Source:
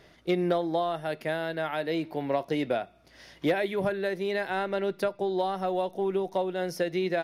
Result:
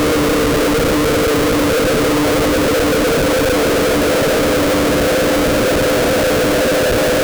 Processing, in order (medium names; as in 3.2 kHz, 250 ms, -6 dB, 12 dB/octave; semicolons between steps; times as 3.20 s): high-pass 250 Hz 12 dB/octave; resonant low shelf 740 Hz +11.5 dB, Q 3; Paulstretch 49×, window 0.50 s, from 2.57 s; Schmitt trigger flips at -21.5 dBFS